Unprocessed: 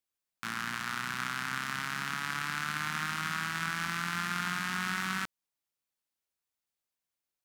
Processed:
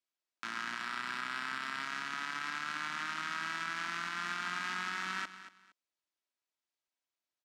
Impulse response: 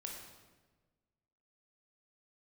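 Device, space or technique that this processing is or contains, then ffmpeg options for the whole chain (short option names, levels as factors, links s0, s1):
DJ mixer with the lows and highs turned down: -filter_complex "[0:a]aecho=1:1:3.1:0.32,asettb=1/sr,asplit=3[s0][s1][s2];[s0]atrim=end=0.784[s3];[s1]atrim=start=0.78:end=1.83,asetpts=PTS-STARTPTS,afade=t=in:d=0.004:c=qsin,afade=t=out:st=1.046:d=0.004:c=qsin,bandreject=f=6300:w=6.8[s4];[s2]atrim=start=1.826[s5];[s3][s4]acrossfade=d=0.004:c1=hsin:c2=qsin[s6];[s6][s5]acrossfade=d=0.004:c1=qsin:c2=hsin,acrossover=split=220 7400:gain=0.2 1 0.112[s7][s8][s9];[s7][s8][s9]amix=inputs=3:normalize=0,aecho=1:1:232|464:0.178|0.0409,alimiter=limit=0.075:level=0:latency=1:release=102,volume=0.794"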